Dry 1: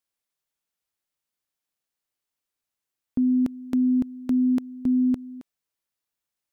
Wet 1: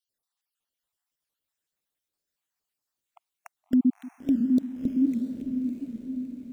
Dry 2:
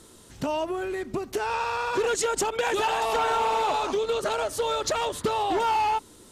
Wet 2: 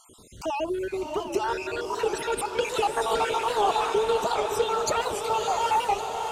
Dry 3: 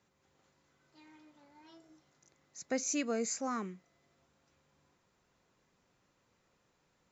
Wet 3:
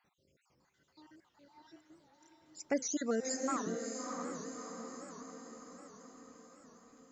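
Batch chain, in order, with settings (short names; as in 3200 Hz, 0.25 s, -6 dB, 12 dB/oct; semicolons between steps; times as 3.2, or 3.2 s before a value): random spectral dropouts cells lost 56%; diffused feedback echo 0.638 s, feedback 58%, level -5 dB; record warp 78 rpm, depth 160 cents; gain +2 dB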